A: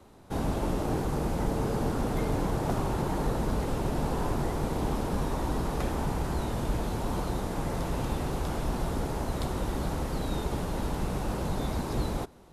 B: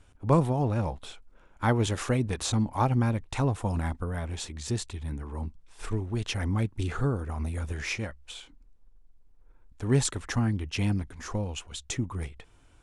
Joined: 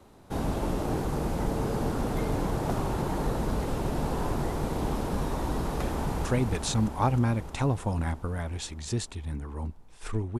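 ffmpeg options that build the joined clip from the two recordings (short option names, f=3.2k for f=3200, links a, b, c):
-filter_complex "[0:a]apad=whole_dur=10.39,atrim=end=10.39,atrim=end=6.252[a];[1:a]atrim=start=2.028:end=6.17[b];[a][b]acrossfade=d=0.004:c1=hsin:c2=hsin,asplit=2[c][d];[d]afade=t=in:st=5.92:d=0.01,afade=t=out:st=6.25:d=0.01,aecho=0:1:310|620|930|1240|1550|1860|2170|2480|2790|3100|3410|3720:0.630957|0.473218|0.354914|0.266185|0.199639|0.149729|0.112297|0.0842226|0.063167|0.0473752|0.0355314|0.0266486[e];[c][e]amix=inputs=2:normalize=0"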